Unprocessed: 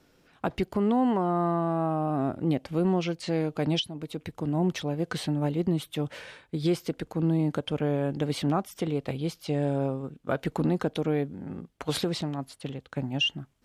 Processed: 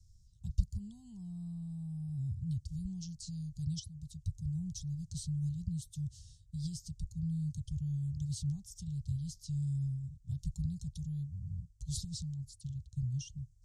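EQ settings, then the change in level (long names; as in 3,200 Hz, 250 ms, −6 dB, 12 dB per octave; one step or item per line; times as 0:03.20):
inverse Chebyshev band-stop filter 290–2,400 Hz, stop band 60 dB
high-frequency loss of the air 130 metres
+13.0 dB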